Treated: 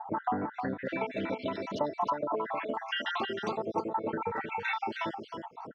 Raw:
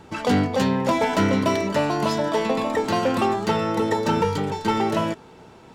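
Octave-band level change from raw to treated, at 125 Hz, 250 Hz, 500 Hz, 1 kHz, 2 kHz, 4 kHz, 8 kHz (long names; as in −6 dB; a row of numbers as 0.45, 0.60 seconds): −18.5 dB, −14.5 dB, −12.0 dB, −8.5 dB, −7.0 dB, −9.5 dB, below −20 dB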